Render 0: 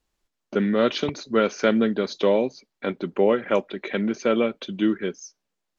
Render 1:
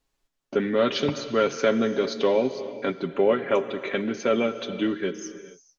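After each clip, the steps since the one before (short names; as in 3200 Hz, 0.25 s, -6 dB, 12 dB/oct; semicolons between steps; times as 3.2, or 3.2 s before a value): in parallel at -1.5 dB: limiter -13.5 dBFS, peak gain reduction 7.5 dB; on the sum: comb 7.3 ms, depth 51%; non-linear reverb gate 0.48 s flat, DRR 11 dB; gain -6 dB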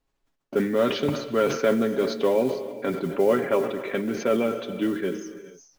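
high shelf 2600 Hz -9 dB; modulation noise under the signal 28 dB; sustainer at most 78 dB/s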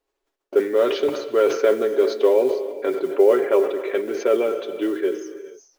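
resonant low shelf 270 Hz -11.5 dB, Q 3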